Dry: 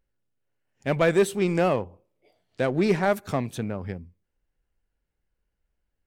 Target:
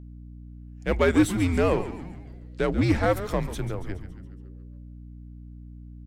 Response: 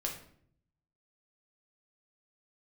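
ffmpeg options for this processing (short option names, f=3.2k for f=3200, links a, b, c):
-filter_complex "[0:a]afreqshift=-90,asplit=7[a][b][c][d][e][f][g];[b]adelay=140,afreqshift=-97,volume=-12dB[h];[c]adelay=280,afreqshift=-194,volume=-17.2dB[i];[d]adelay=420,afreqshift=-291,volume=-22.4dB[j];[e]adelay=560,afreqshift=-388,volume=-27.6dB[k];[f]adelay=700,afreqshift=-485,volume=-32.8dB[l];[g]adelay=840,afreqshift=-582,volume=-38dB[m];[a][h][i][j][k][l][m]amix=inputs=7:normalize=0,aeval=exprs='val(0)+0.00891*(sin(2*PI*60*n/s)+sin(2*PI*2*60*n/s)/2+sin(2*PI*3*60*n/s)/3+sin(2*PI*4*60*n/s)/4+sin(2*PI*5*60*n/s)/5)':c=same"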